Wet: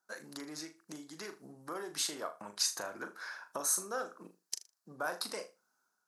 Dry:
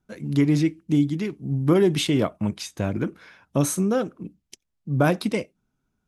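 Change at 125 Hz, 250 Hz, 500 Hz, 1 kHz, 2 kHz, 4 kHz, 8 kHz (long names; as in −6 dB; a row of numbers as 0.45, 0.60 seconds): −35.5, −27.0, −18.0, −10.0, −8.5, −5.5, −1.0 decibels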